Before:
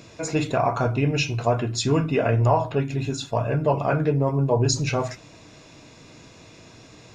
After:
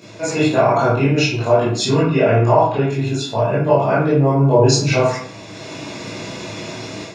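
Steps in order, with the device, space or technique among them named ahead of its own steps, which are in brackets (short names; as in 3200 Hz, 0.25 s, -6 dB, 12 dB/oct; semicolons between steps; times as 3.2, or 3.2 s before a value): far laptop microphone (reverb RT60 0.55 s, pre-delay 17 ms, DRR -9.5 dB; HPF 110 Hz; AGC gain up to 10 dB); 2.03–2.9 LPF 7100 Hz 24 dB/oct; gain -1 dB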